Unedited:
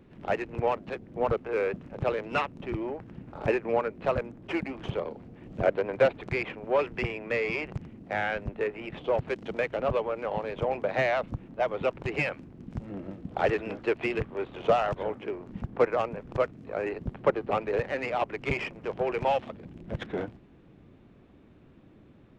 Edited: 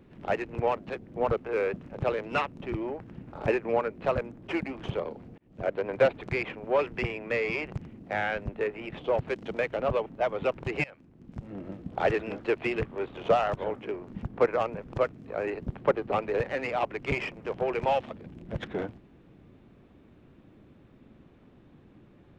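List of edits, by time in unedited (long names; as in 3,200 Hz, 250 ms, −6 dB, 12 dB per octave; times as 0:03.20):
0:05.38–0:05.92: fade in
0:10.06–0:11.45: remove
0:12.23–0:13.11: fade in, from −20.5 dB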